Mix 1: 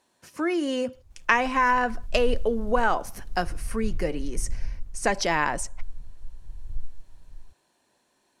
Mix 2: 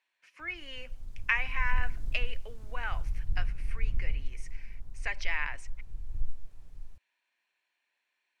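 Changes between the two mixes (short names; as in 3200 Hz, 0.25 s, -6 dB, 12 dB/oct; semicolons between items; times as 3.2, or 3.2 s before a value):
speech: add band-pass 2300 Hz, Q 3.5; background: entry -0.55 s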